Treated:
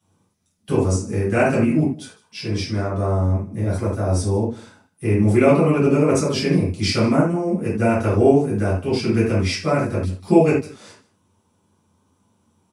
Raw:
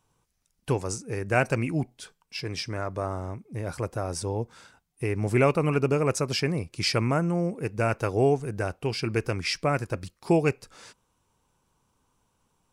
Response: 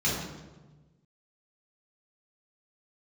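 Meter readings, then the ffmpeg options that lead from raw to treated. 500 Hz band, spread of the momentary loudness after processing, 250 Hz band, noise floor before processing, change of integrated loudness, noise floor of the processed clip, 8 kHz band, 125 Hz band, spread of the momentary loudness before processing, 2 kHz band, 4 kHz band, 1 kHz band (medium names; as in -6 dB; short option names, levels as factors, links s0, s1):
+7.5 dB, 9 LU, +11.0 dB, -74 dBFS, +8.0 dB, -65 dBFS, +4.5 dB, +8.0 dB, 12 LU, +3.5 dB, +3.5 dB, +5.0 dB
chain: -filter_complex "[0:a]aecho=1:1:152:0.1[s0];[1:a]atrim=start_sample=2205,afade=t=out:st=0.21:d=0.01,atrim=end_sample=9702,asetrate=66150,aresample=44100[s1];[s0][s1]afir=irnorm=-1:irlink=0,volume=0.708"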